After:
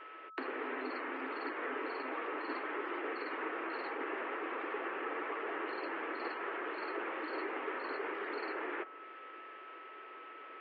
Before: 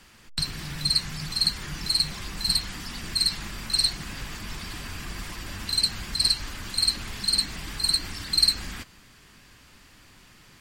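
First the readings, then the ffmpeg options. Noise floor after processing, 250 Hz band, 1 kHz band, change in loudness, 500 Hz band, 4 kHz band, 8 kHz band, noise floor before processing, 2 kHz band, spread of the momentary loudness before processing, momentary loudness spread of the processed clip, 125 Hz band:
−51 dBFS, −3.0 dB, +4.5 dB, −14.5 dB, +10.0 dB, −31.0 dB, below −40 dB, −54 dBFS, −1.0 dB, 14 LU, 11 LU, below −40 dB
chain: -filter_complex "[0:a]highpass=frequency=260:width_type=q:width=0.5412,highpass=frequency=260:width_type=q:width=1.307,lowpass=frequency=2700:width_type=q:width=0.5176,lowpass=frequency=2700:width_type=q:width=0.7071,lowpass=frequency=2700:width_type=q:width=1.932,afreqshift=110,acrossover=split=700|1900[link_01][link_02][link_03];[link_03]acompressor=threshold=-58dB:ratio=6[link_04];[link_01][link_02][link_04]amix=inputs=3:normalize=0,highshelf=frequency=2200:gain=-9,aeval=exprs='val(0)+0.00141*sin(2*PI*1300*n/s)':channel_layout=same,volume=7dB"

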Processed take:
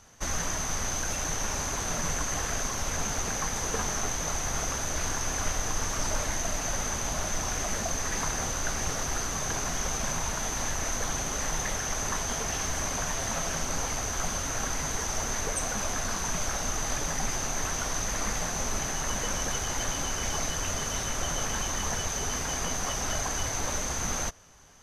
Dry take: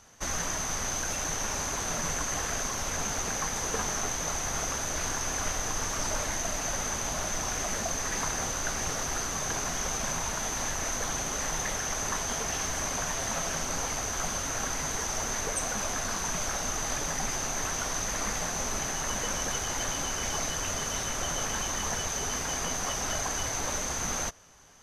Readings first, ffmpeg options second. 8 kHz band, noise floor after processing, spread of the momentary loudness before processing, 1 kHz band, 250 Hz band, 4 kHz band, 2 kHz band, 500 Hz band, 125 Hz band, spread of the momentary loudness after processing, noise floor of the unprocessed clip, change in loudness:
0.0 dB, −33 dBFS, 1 LU, 0.0 dB, +1.5 dB, 0.0 dB, 0.0 dB, +0.5 dB, +3.0 dB, 1 LU, −33 dBFS, 0.0 dB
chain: -af "lowshelf=frequency=140:gain=5"

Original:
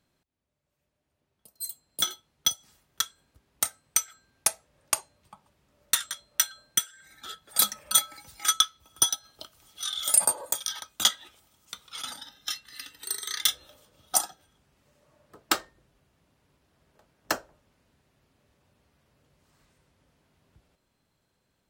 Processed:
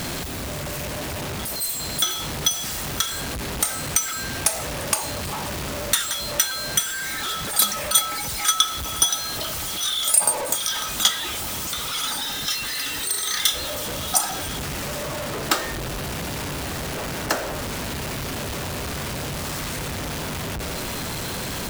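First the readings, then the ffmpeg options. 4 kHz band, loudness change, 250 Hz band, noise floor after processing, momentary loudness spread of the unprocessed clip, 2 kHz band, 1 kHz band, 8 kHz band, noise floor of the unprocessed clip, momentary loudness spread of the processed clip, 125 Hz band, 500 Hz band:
+6.5 dB, +3.5 dB, +17.0 dB, −29 dBFS, 18 LU, +10.5 dB, +9.0 dB, +5.0 dB, −78 dBFS, 9 LU, can't be measured, +14.5 dB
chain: -af "aeval=exprs='val(0)+0.5*0.0562*sgn(val(0))':channel_layout=same,volume=2dB"

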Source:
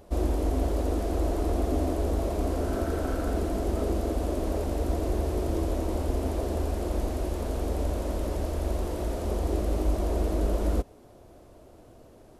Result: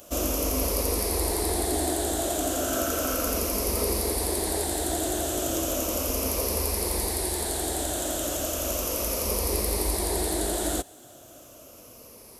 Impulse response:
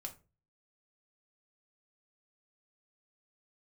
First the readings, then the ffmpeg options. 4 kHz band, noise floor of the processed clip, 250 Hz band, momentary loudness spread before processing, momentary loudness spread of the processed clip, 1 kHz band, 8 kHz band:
+13.5 dB, −49 dBFS, −0.5 dB, 3 LU, 2 LU, +3.0 dB, +19.5 dB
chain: -af "afftfilt=real='re*pow(10,8/40*sin(2*PI*(0.87*log(max(b,1)*sr/1024/100)/log(2)-(-0.35)*(pts-256)/sr)))':imag='im*pow(10,8/40*sin(2*PI*(0.87*log(max(b,1)*sr/1024/100)/log(2)-(-0.35)*(pts-256)/sr)))':win_size=1024:overlap=0.75,highpass=frequency=94:poles=1,adynamicequalizer=threshold=0.00631:dfrequency=150:dqfactor=1:tfrequency=150:tqfactor=1:attack=5:release=100:ratio=0.375:range=2:mode=cutabove:tftype=bell,crystalizer=i=7:c=0"

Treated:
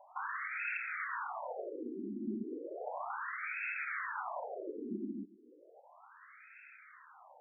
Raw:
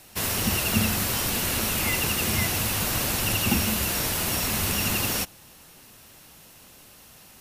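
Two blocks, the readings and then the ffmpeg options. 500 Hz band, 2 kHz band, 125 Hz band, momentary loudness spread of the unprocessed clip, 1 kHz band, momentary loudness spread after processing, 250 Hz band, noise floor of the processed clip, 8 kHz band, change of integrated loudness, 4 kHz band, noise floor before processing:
−9.5 dB, −9.5 dB, below −25 dB, 2 LU, −8.0 dB, 19 LU, −13.0 dB, −61 dBFS, below −40 dB, −16.0 dB, below −40 dB, −51 dBFS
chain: -af "acompressor=threshold=-28dB:ratio=6,highshelf=frequency=3900:gain=9.5,areverse,acompressor=mode=upward:threshold=-39dB:ratio=2.5,areverse,afftfilt=real='re*between(b*sr/1024,270*pow(1900/270,0.5+0.5*sin(2*PI*0.34*pts/sr))/1.41,270*pow(1900/270,0.5+0.5*sin(2*PI*0.34*pts/sr))*1.41)':imag='im*between(b*sr/1024,270*pow(1900/270,0.5+0.5*sin(2*PI*0.34*pts/sr))/1.41,270*pow(1900/270,0.5+0.5*sin(2*PI*0.34*pts/sr))*1.41)':win_size=1024:overlap=0.75,volume=2.5dB"

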